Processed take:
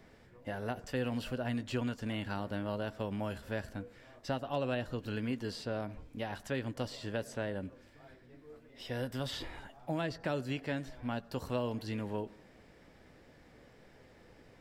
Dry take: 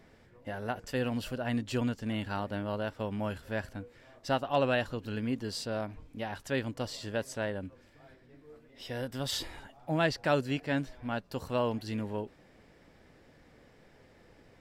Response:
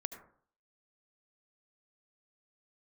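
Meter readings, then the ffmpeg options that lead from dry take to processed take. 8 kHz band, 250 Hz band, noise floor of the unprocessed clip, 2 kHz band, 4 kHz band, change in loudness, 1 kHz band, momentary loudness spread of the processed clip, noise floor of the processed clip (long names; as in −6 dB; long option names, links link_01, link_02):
−7.5 dB, −3.0 dB, −61 dBFS, −5.0 dB, −5.0 dB, −4.0 dB, −6.0 dB, 12 LU, −60 dBFS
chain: -filter_complex "[0:a]acrossover=split=510|3500[link_01][link_02][link_03];[link_01]acompressor=threshold=-34dB:ratio=4[link_04];[link_02]acompressor=threshold=-39dB:ratio=4[link_05];[link_03]acompressor=threshold=-52dB:ratio=4[link_06];[link_04][link_05][link_06]amix=inputs=3:normalize=0,asplit=2[link_07][link_08];[1:a]atrim=start_sample=2205,adelay=16[link_09];[link_08][link_09]afir=irnorm=-1:irlink=0,volume=-13dB[link_10];[link_07][link_10]amix=inputs=2:normalize=0"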